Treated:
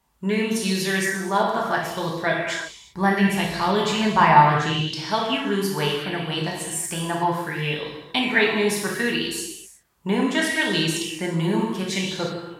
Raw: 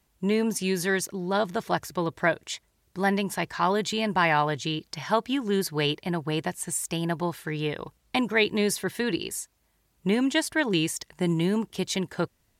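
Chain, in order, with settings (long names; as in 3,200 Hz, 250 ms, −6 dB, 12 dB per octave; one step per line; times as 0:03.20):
0:02.50–0:04.88: low-shelf EQ 170 Hz +11 dB
reverb whose tail is shaped and stops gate 400 ms falling, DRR −2.5 dB
auto-filter bell 0.69 Hz 910–4,300 Hz +10 dB
level −2.5 dB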